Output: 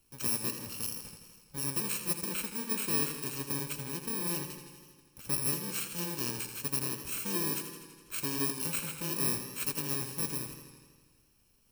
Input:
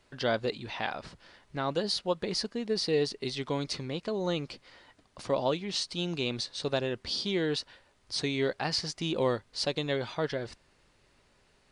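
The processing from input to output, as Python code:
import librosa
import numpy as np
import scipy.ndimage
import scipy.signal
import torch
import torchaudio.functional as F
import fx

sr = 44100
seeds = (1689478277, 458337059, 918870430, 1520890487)

y = fx.bit_reversed(x, sr, seeds[0], block=64)
y = fx.echo_warbled(y, sr, ms=82, feedback_pct=70, rate_hz=2.8, cents=51, wet_db=-9.0)
y = y * 10.0 ** (-3.5 / 20.0)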